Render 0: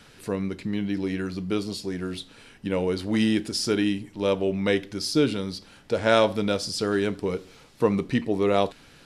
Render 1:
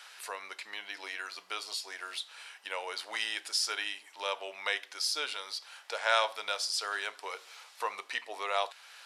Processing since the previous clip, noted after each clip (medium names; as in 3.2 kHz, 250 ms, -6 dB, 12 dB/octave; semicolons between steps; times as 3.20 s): high-pass 780 Hz 24 dB/octave; in parallel at +0.5 dB: compression, threshold -41 dBFS, peak gain reduction 20.5 dB; on the sum: trim -3.5 dB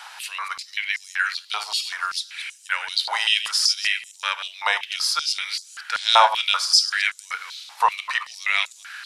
chunks repeated in reverse 121 ms, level -9.5 dB; step-sequenced high-pass 5.2 Hz 850–7000 Hz; trim +8 dB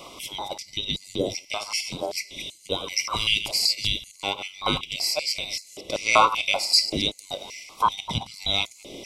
every band turned upside down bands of 2 kHz; trim -2.5 dB